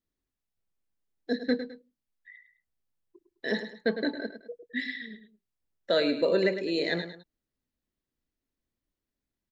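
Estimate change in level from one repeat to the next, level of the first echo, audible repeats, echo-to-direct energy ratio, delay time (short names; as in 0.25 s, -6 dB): -9.5 dB, -10.5 dB, 2, -10.0 dB, 0.105 s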